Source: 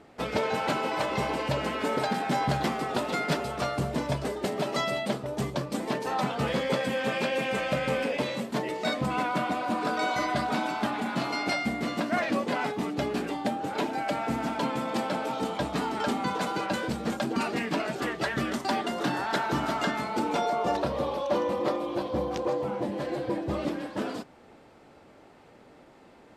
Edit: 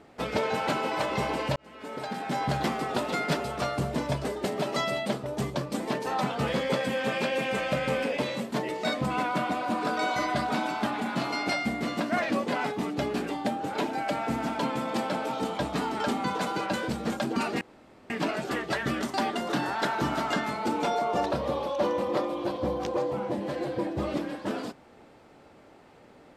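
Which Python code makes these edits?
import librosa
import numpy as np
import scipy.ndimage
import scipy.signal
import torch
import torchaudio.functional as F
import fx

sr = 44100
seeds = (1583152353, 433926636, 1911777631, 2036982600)

y = fx.edit(x, sr, fx.fade_in_span(start_s=1.56, length_s=1.1),
    fx.insert_room_tone(at_s=17.61, length_s=0.49), tone=tone)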